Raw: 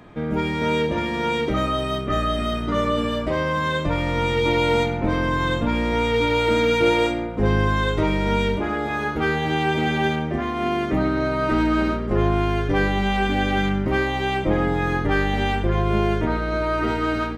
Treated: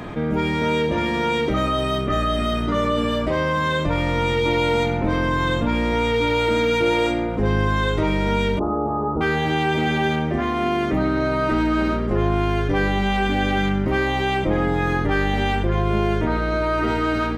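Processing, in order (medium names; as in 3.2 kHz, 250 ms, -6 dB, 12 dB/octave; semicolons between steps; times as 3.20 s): 8.59–9.21 s: steep low-pass 1.3 kHz 96 dB/octave; level flattener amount 50%; trim -2 dB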